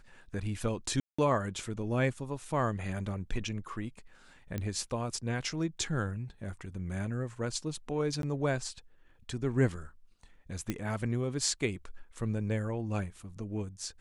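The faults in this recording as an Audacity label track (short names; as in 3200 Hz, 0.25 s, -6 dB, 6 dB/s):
1.000000	1.190000	gap 0.185 s
4.580000	4.580000	pop -21 dBFS
8.220000	8.230000	gap 12 ms
10.700000	10.700000	pop -18 dBFS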